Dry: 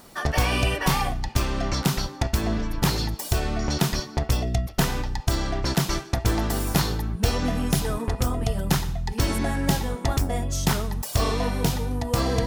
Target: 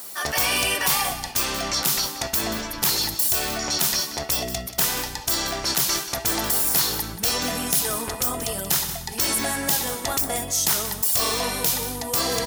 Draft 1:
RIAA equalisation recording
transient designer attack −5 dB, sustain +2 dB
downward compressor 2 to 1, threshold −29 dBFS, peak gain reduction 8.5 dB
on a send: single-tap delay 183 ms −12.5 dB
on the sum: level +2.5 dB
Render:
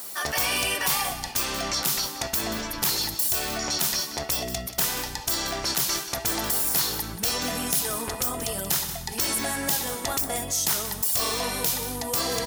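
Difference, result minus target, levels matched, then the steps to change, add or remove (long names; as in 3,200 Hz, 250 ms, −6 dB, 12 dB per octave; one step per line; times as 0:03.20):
downward compressor: peak gain reduction +3.5 dB
change: downward compressor 2 to 1, threshold −22.5 dBFS, peak gain reduction 5 dB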